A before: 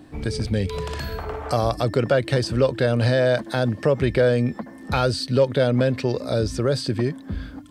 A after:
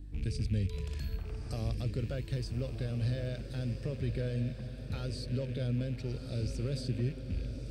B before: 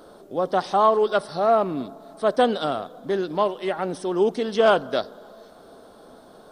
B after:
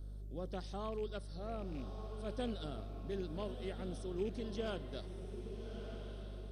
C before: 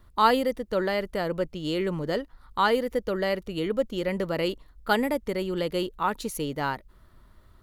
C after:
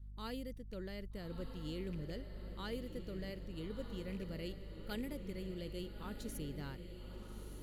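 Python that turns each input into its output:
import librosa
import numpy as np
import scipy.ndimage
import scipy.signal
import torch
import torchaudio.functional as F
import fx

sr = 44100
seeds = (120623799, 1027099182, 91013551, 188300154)

y = fx.rattle_buzz(x, sr, strikes_db=-30.0, level_db=-27.0)
y = fx.low_shelf(y, sr, hz=180.0, db=-4.5)
y = fx.rider(y, sr, range_db=3, speed_s=2.0)
y = fx.add_hum(y, sr, base_hz=50, snr_db=19)
y = fx.tone_stack(y, sr, knobs='10-0-1')
y = fx.echo_diffused(y, sr, ms=1264, feedback_pct=47, wet_db=-8.0)
y = y * 10.0 ** (4.5 / 20.0)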